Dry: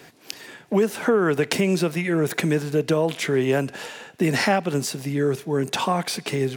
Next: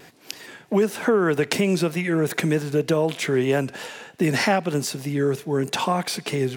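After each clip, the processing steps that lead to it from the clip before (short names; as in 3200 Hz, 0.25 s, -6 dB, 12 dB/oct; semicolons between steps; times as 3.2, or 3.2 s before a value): vibrato 3.2 Hz 44 cents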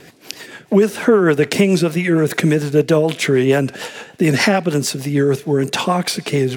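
rotary speaker horn 6.7 Hz; gain +8.5 dB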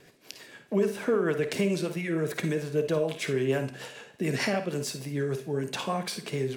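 resonator 66 Hz, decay 0.72 s, harmonics all, mix 50%; reverb, pre-delay 50 ms, DRR 9.5 dB; gain -9 dB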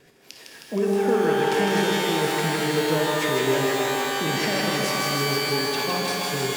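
thinning echo 0.157 s, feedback 77%, high-pass 190 Hz, level -4 dB; shimmer reverb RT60 3.1 s, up +12 st, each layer -2 dB, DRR 2 dB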